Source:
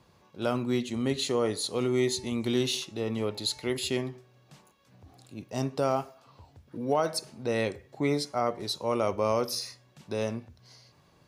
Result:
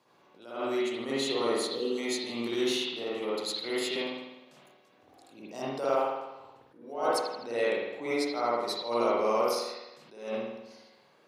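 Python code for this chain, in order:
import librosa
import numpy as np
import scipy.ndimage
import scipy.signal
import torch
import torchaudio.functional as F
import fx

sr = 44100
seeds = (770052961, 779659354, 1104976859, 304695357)

y = fx.spec_repair(x, sr, seeds[0], start_s=1.74, length_s=0.22, low_hz=590.0, high_hz=2500.0, source='before')
y = scipy.signal.sosfilt(scipy.signal.butter(2, 310.0, 'highpass', fs=sr, output='sos'), y)
y = fx.hpss(y, sr, part='harmonic', gain_db=-3)
y = fx.rev_spring(y, sr, rt60_s=1.0, pass_ms=(51,), chirp_ms=30, drr_db=-6.5)
y = fx.attack_slew(y, sr, db_per_s=100.0)
y = y * librosa.db_to_amplitude(-3.5)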